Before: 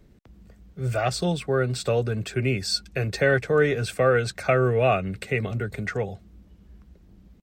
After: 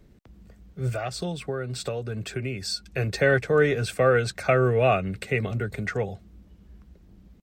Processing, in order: 0.89–2.98 compressor, threshold -27 dBFS, peak gain reduction 9 dB

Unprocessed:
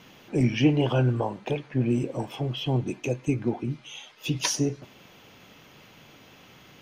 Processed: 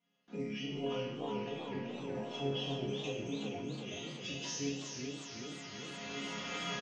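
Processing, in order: recorder AGC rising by 12 dB/s; gate with hold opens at -39 dBFS; HPF 48 Hz; comb 4.2 ms, depth 77%; limiter -20 dBFS, peak gain reduction 13 dB; resonator bank C#3 major, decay 0.82 s; on a send: feedback echo 0.419 s, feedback 56%, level -9 dB; on the sum: downsampling 16000 Hz; warbling echo 0.372 s, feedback 61%, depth 195 cents, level -7.5 dB; gain +9 dB

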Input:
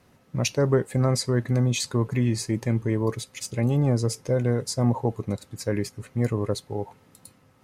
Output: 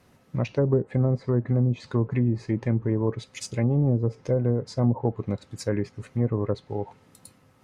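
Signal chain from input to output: treble ducked by the level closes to 490 Hz, closed at -17 dBFS; 0.8–1.55 short-mantissa float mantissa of 8-bit

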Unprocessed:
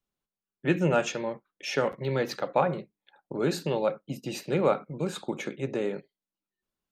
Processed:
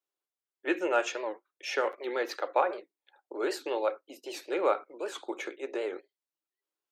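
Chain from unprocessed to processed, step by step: elliptic high-pass 330 Hz, stop band 70 dB; dynamic EQ 1500 Hz, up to +4 dB, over -42 dBFS, Q 0.76; record warp 78 rpm, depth 160 cents; gain -3 dB

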